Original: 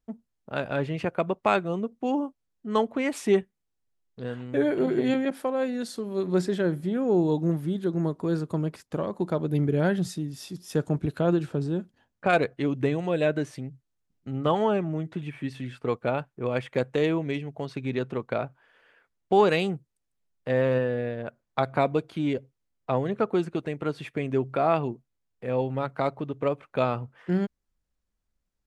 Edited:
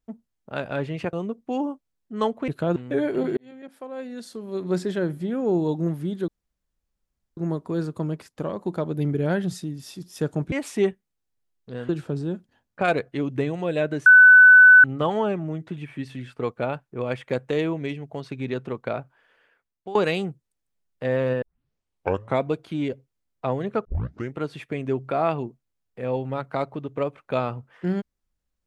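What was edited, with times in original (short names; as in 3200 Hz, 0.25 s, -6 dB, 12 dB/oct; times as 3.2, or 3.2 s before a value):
1.13–1.67 cut
3.02–4.39 swap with 11.06–11.34
5–6.45 fade in
7.91 insert room tone 1.09 s
13.51–14.29 bleep 1500 Hz -7 dBFS
18.42–19.4 fade out equal-power, to -18.5 dB
20.87 tape start 1.00 s
23.3 tape start 0.49 s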